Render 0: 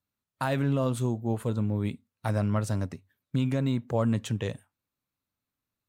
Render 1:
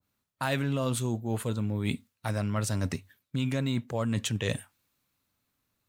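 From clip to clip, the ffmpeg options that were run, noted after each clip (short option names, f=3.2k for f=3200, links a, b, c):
-af "areverse,acompressor=threshold=-36dB:ratio=5,areverse,adynamicequalizer=threshold=0.00126:dfrequency=1500:dqfactor=0.7:tfrequency=1500:tqfactor=0.7:attack=5:release=100:ratio=0.375:range=4:mode=boostabove:tftype=highshelf,volume=8.5dB"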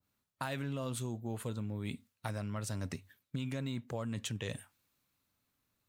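-af "acompressor=threshold=-32dB:ratio=6,volume=-2.5dB"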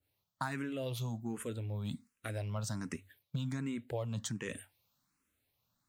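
-filter_complex "[0:a]asplit=2[a][b];[b]afreqshift=1.3[c];[a][c]amix=inputs=2:normalize=1,volume=3dB"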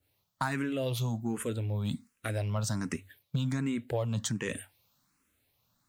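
-af "asoftclip=type=tanh:threshold=-23dB,volume=6.5dB"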